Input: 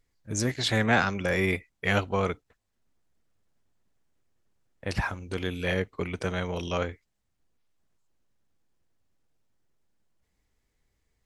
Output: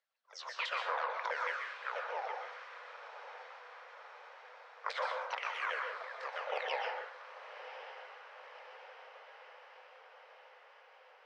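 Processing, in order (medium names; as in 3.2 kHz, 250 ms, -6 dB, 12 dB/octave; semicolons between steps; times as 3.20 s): sawtooth pitch modulation -11 st, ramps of 163 ms; steep high-pass 500 Hz 72 dB/octave; treble shelf 6.3 kHz +11.5 dB; in parallel at +2.5 dB: peak limiter -21.5 dBFS, peak gain reduction 8.5 dB; on the sum: random-step tremolo 1.7 Hz, depth 85%; compression 10:1, threshold -36 dBFS, peak gain reduction 16 dB; distance through air 220 m; on a send: echo that smears into a reverb 1079 ms, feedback 66%, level -12 dB; on the sum: plate-style reverb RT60 0.53 s, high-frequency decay 0.8×, pre-delay 110 ms, DRR 2.5 dB; trim +3.5 dB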